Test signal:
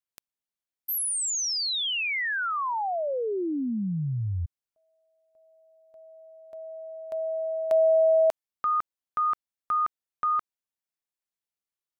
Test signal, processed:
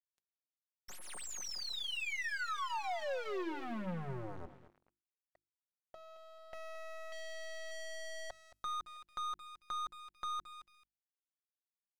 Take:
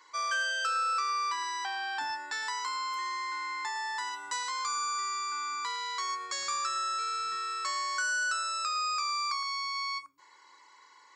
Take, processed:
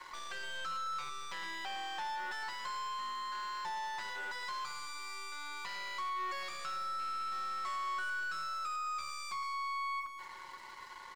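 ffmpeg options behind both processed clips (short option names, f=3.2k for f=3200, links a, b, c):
-af "aeval=exprs='(tanh(178*val(0)+0.35)-tanh(0.35))/178':c=same,aecho=1:1:5.5:0.78,aecho=1:1:220|440|660|880:0.178|0.0747|0.0314|0.0132,acontrast=35,lowpass=f=8k:w=0.5412,lowpass=f=8k:w=1.3066,bass=f=250:g=-5,treble=f=4k:g=-8,aeval=exprs='sgn(val(0))*max(abs(val(0))-0.00106,0)':c=same,acompressor=threshold=-54dB:ratio=1.5:release=51,bandreject=f=50:t=h:w=6,bandreject=f=100:t=h:w=6,bandreject=f=150:t=h:w=6,bandreject=f=200:t=h:w=6,bandreject=f=250:t=h:w=6,bandreject=f=300:t=h:w=6,bandreject=f=350:t=h:w=6,volume=6dB"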